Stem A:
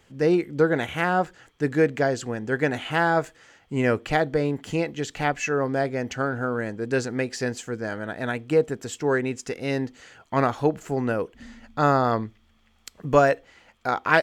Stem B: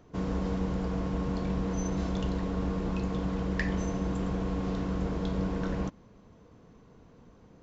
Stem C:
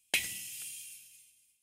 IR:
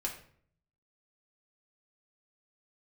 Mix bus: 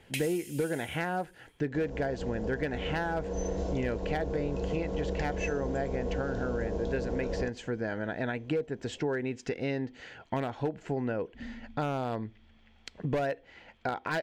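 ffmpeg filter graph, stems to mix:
-filter_complex "[0:a]lowpass=3600,asoftclip=type=hard:threshold=0.211,volume=1.33[s0];[1:a]dynaudnorm=f=160:g=21:m=2.37,equalizer=f=125:t=o:w=1:g=-9,equalizer=f=250:t=o:w=1:g=-9,equalizer=f=500:t=o:w=1:g=8,equalizer=f=1000:t=o:w=1:g=-3,equalizer=f=2000:t=o:w=1:g=-11,equalizer=f=4000:t=o:w=1:g=-5,adelay=1600,volume=1.33[s1];[2:a]volume=0.501[s2];[s0][s1]amix=inputs=2:normalize=0,acompressor=threshold=0.0355:ratio=5,volume=1[s3];[s2][s3]amix=inputs=2:normalize=0,equalizer=f=1200:w=5.7:g=-11.5"

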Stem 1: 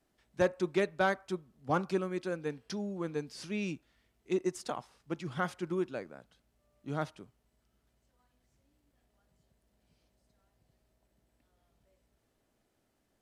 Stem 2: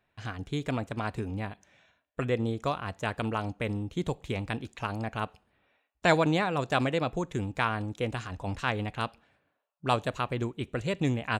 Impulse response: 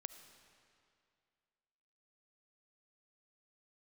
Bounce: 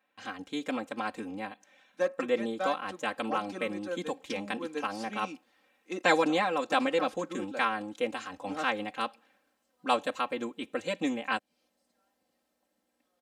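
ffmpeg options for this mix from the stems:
-filter_complex "[0:a]dynaudnorm=f=480:g=9:m=1.58,adelay=1600,volume=0.562[s0];[1:a]volume=0.75,asplit=2[s1][s2];[s2]apad=whole_len=657790[s3];[s0][s3]sidechaincompress=threshold=0.0224:ratio=4:attack=11:release=390[s4];[s4][s1]amix=inputs=2:normalize=0,highpass=280,aecho=1:1:3.8:0.99"

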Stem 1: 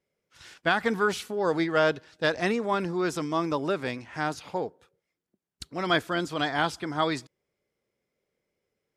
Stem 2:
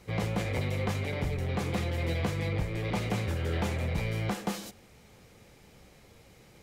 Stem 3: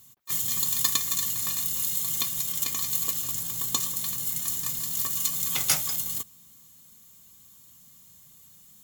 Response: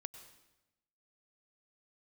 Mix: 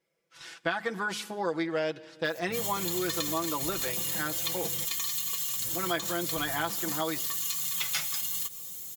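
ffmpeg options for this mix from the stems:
-filter_complex "[0:a]lowshelf=f=150:g=-11.5,bandreject=f=104.6:t=h:w=4,bandreject=f=209.2:t=h:w=4,volume=0.944,asplit=3[s0][s1][s2];[s1]volume=0.398[s3];[1:a]adelay=2400,volume=0.376,asplit=3[s4][s5][s6];[s4]atrim=end=4.85,asetpts=PTS-STARTPTS,afade=t=out:st=4.846:d=0.004:c=hsin[s7];[s5]atrim=start=4.85:end=5.64,asetpts=PTS-STARTPTS,volume=0[s8];[s6]atrim=start=5.64,asetpts=PTS-STARTPTS,afade=t=in:d=0.004:c=hsin[s9];[s7][s8][s9]concat=n=3:v=0:a=1[s10];[2:a]acrossover=split=3700[s11][s12];[s12]acompressor=threshold=0.0158:ratio=4:attack=1:release=60[s13];[s11][s13]amix=inputs=2:normalize=0,tiltshelf=f=1300:g=-9,adelay=2250,volume=0.891,asplit=2[s14][s15];[s15]volume=0.668[s16];[s2]apad=whole_len=488779[s17];[s14][s17]sidechaincompress=threshold=0.0316:ratio=8:attack=16:release=119[s18];[3:a]atrim=start_sample=2205[s19];[s3][s16]amix=inputs=2:normalize=0[s20];[s20][s19]afir=irnorm=-1:irlink=0[s21];[s0][s10][s18][s21]amix=inputs=4:normalize=0,aecho=1:1:6:0.77,acompressor=threshold=0.0282:ratio=2.5"

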